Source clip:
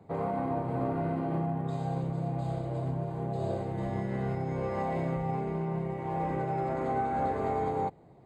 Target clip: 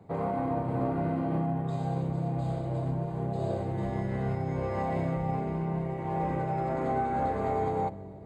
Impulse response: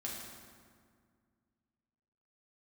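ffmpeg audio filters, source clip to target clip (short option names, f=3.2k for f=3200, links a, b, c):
-filter_complex "[0:a]asplit=2[a][b];[1:a]atrim=start_sample=2205,asetrate=23814,aresample=44100,lowshelf=f=370:g=11.5[c];[b][c]afir=irnorm=-1:irlink=0,volume=-19dB[d];[a][d]amix=inputs=2:normalize=0"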